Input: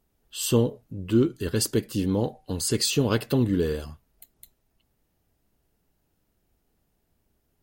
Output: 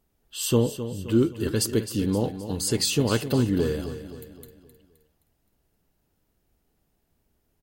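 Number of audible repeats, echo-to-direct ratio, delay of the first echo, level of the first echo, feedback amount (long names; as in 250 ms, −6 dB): 4, −10.5 dB, 261 ms, −11.5 dB, 46%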